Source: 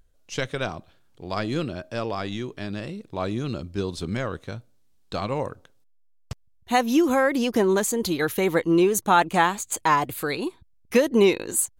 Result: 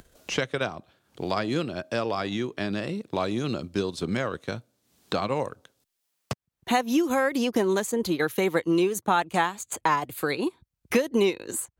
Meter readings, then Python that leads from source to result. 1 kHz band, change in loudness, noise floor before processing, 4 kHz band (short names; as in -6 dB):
-3.5 dB, -3.0 dB, -59 dBFS, -1.0 dB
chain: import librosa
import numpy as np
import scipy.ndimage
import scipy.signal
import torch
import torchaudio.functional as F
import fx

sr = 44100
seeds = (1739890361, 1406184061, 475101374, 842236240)

y = fx.transient(x, sr, attack_db=1, sustain_db=-6)
y = fx.highpass(y, sr, hz=110.0, slope=6)
y = fx.band_squash(y, sr, depth_pct=70)
y = y * 10.0 ** (-2.0 / 20.0)